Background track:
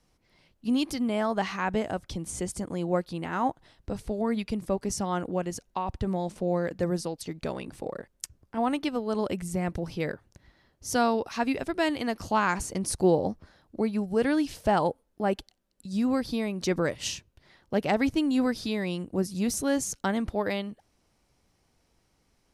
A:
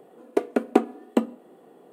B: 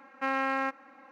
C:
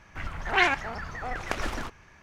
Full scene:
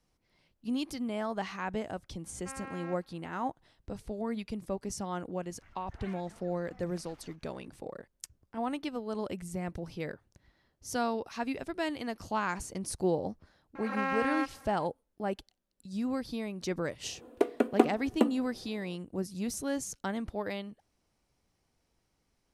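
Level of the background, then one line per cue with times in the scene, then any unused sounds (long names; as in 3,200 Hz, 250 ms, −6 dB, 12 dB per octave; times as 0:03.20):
background track −7 dB
0:02.24: mix in B −15.5 dB
0:05.46: mix in C −18 dB + downward compressor 1.5 to 1, threshold −49 dBFS
0:13.75: mix in B −2.5 dB + background raised ahead of every attack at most 76 dB per second
0:17.04: mix in A −4 dB + parametric band 3,300 Hz +2.5 dB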